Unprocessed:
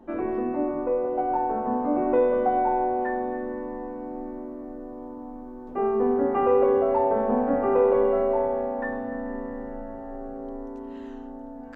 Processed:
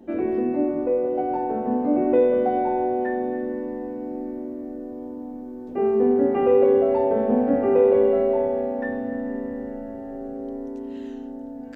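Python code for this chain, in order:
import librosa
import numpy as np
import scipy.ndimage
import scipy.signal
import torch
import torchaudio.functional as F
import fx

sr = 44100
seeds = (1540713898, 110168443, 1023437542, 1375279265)

y = fx.highpass(x, sr, hz=120.0, slope=6)
y = fx.peak_eq(y, sr, hz=1100.0, db=-14.5, octaves=1.2)
y = F.gain(torch.from_numpy(y), 6.5).numpy()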